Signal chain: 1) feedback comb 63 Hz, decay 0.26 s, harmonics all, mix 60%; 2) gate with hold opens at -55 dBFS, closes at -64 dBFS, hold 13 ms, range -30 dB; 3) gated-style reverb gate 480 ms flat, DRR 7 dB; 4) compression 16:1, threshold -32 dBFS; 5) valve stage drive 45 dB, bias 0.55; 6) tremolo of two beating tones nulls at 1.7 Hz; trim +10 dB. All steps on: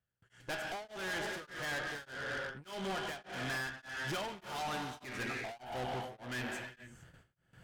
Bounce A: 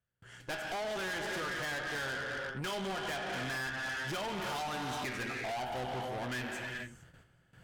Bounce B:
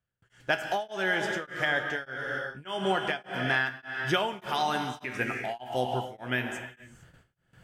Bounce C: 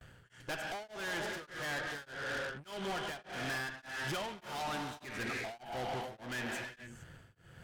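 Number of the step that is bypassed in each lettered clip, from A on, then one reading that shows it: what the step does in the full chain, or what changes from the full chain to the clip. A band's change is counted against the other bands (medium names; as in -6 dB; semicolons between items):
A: 6, loudness change +3.0 LU; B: 5, crest factor change +10.0 dB; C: 1, momentary loudness spread change +7 LU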